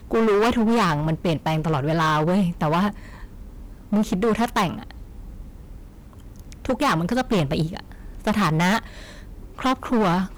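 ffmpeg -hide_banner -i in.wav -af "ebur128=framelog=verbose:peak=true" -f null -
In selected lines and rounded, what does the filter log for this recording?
Integrated loudness:
  I:         -22.0 LUFS
  Threshold: -33.6 LUFS
Loudness range:
  LRA:         5.2 LU
  Threshold: -44.4 LUFS
  LRA low:   -27.1 LUFS
  LRA high:  -21.9 LUFS
True peak:
  Peak:      -15.3 dBFS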